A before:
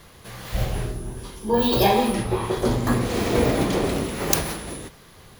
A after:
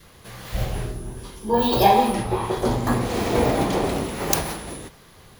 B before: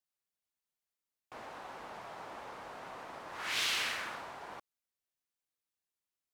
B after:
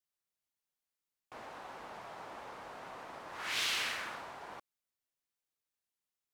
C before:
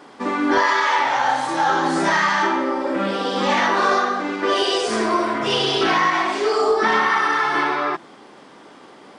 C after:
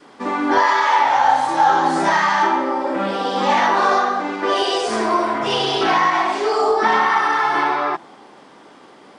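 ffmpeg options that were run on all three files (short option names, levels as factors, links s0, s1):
-af "adynamicequalizer=threshold=0.02:dfrequency=820:dqfactor=2.1:tfrequency=820:tqfactor=2.1:attack=5:release=100:ratio=0.375:range=3.5:mode=boostabove:tftype=bell,volume=0.891"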